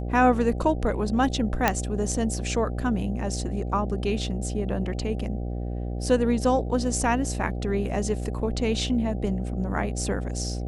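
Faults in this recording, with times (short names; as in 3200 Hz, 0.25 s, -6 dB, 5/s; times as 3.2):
buzz 60 Hz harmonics 13 -30 dBFS
1.68 pop -5 dBFS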